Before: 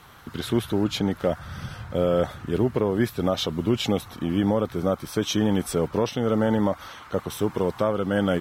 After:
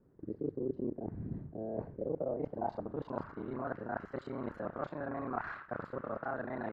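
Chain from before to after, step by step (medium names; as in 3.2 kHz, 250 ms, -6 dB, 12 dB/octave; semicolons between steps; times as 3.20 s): time reversed locally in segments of 34 ms; reverse; compression 16:1, threshold -32 dBFS, peak gain reduction 16.5 dB; reverse; low-pass sweep 300 Hz -> 1.1 kHz, 1.79–4.44 s; tape speed +25%; gate -47 dBFS, range -10 dB; on a send: delay 86 ms -23 dB; on the sum: trim -3.5 dB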